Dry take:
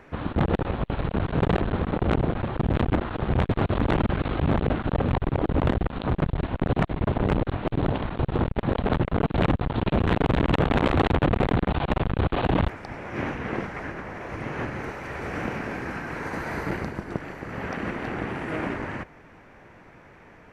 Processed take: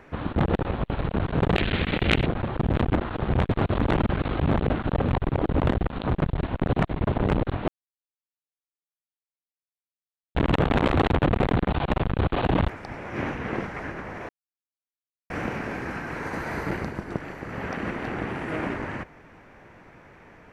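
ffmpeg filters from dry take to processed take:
-filter_complex "[0:a]asettb=1/sr,asplit=3[a][b][c];[a]atrim=end=1.564[d];[b]atrim=start=1.56:end=2.26,asetpts=PTS-STARTPTS,afade=t=in:d=0.004:c=qsin,afade=t=out:st=0.696:d=0.004:c=qsin,highshelf=f=1.6k:t=q:w=1.5:g=12.5[e];[c]atrim=start=2.256[f];[d][e]acrossfade=d=0.004:c1=hsin:c2=qsin[g];[g][f]acrossfade=d=0.004:c1=qsin:c2=hsin,asplit=5[h][i][j][k][l];[h]atrim=end=7.68,asetpts=PTS-STARTPTS,afade=t=out:st=7.676:d=0.004:c=hsin[m];[i]atrim=start=7.68:end=10.35,asetpts=PTS-STARTPTS,volume=0[n];[j]atrim=start=10.35:end=14.29,asetpts=PTS-STARTPTS,afade=t=in:d=0.004:c=hsin,afade=t=out:st=3.936:d=0.004:c=hsin[o];[k]atrim=start=14.29:end=15.3,asetpts=PTS-STARTPTS,volume=0[p];[l]atrim=start=15.3,asetpts=PTS-STARTPTS,afade=t=in:d=0.004:c=hsin[q];[m][n][o][p][q]concat=n=5:v=0:a=1"

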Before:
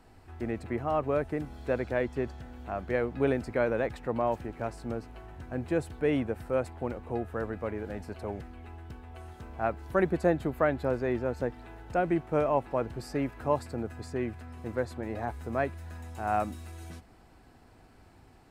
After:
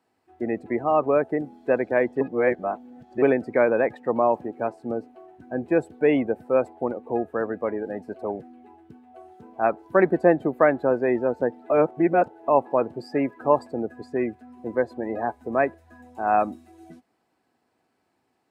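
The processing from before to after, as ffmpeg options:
-filter_complex "[0:a]asplit=5[a][b][c][d][e];[a]atrim=end=2.212[f];[b]atrim=start=2.208:end=3.222,asetpts=PTS-STARTPTS,areverse[g];[c]atrim=start=3.218:end=11.702[h];[d]atrim=start=11.698:end=12.482,asetpts=PTS-STARTPTS,areverse[i];[e]atrim=start=12.478[j];[f][g]acrossfade=d=0.004:c1=hsin:c2=hsin[k];[k][h]acrossfade=d=0.004:c1=hsin:c2=hsin[l];[l][i]acrossfade=d=0.004:c1=hsin:c2=hsin[m];[m][j]acrossfade=d=0.004:c1=hsin:c2=hsin,highpass=230,bandreject=f=1.4k:w=18,afftdn=nr=20:nf=-41,volume=8.5dB"

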